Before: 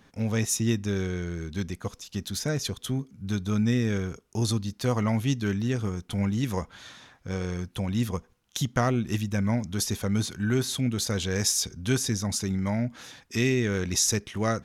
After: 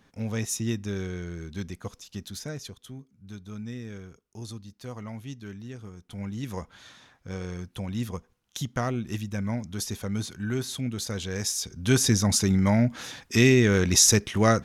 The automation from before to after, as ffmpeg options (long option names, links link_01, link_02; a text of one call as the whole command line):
ffmpeg -i in.wav -af "volume=15.5dB,afade=type=out:start_time=2.01:duration=0.84:silence=0.334965,afade=type=in:start_time=5.94:duration=0.78:silence=0.354813,afade=type=in:start_time=11.65:duration=0.42:silence=0.316228" out.wav